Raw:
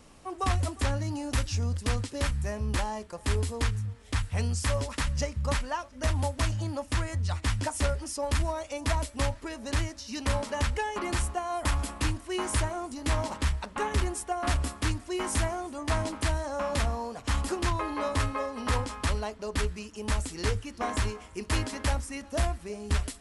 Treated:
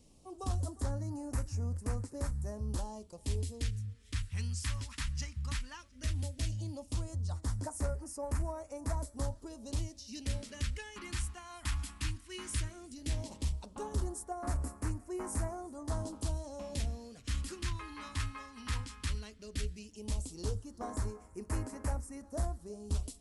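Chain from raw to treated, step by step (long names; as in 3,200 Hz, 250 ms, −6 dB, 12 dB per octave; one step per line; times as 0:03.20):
all-pass phaser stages 2, 0.15 Hz, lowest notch 540–3,200 Hz
level −7.5 dB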